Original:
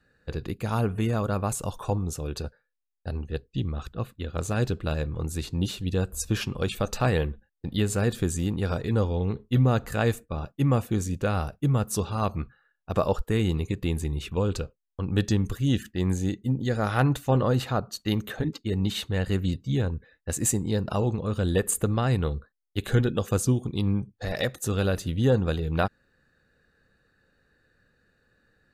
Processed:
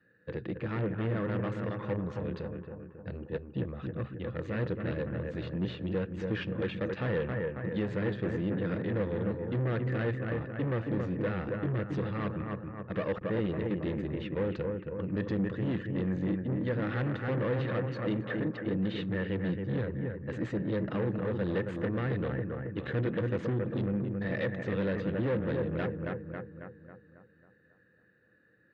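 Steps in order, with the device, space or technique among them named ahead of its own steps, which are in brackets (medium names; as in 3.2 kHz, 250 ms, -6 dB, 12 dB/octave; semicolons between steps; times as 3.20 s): analogue delay pedal into a guitar amplifier (bucket-brigade echo 273 ms, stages 4096, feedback 50%, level -6.5 dB; valve stage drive 29 dB, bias 0.6; cabinet simulation 96–3400 Hz, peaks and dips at 120 Hz +6 dB, 190 Hz +8 dB, 320 Hz +9 dB, 500 Hz +8 dB, 750 Hz -4 dB, 1.8 kHz +9 dB); trim -3.5 dB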